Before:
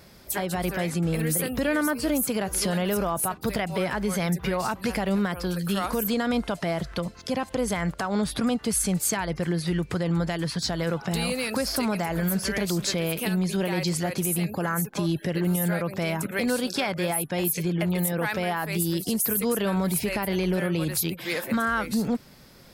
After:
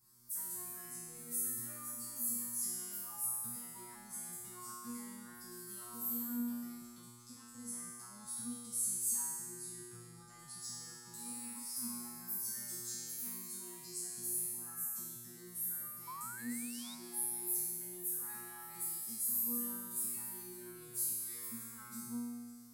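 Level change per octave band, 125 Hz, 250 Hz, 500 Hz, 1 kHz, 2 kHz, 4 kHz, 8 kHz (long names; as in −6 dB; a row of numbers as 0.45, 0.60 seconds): −30.0, −21.0, −30.0, −22.5, −25.5, −20.5, −6.0 decibels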